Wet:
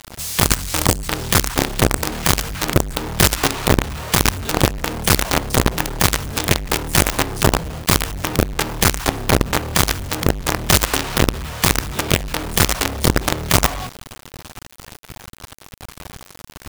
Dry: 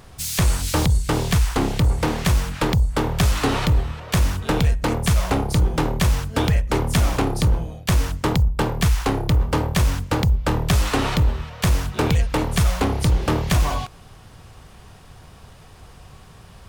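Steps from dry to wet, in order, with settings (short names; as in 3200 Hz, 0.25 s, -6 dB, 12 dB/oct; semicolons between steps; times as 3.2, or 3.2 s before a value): notches 60/120/180/240/300/360/420/480/540 Hz; companded quantiser 2-bit; gain -1 dB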